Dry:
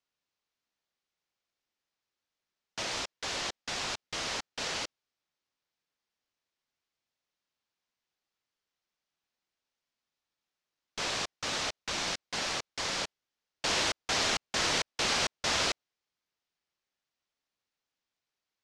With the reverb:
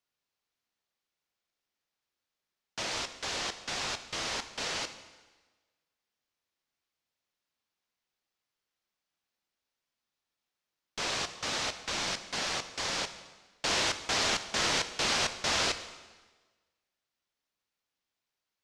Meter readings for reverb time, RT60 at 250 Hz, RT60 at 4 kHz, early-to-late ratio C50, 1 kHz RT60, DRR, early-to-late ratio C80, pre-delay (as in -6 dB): 1.3 s, 1.3 s, 1.2 s, 11.5 dB, 1.3 s, 9.5 dB, 13.0 dB, 6 ms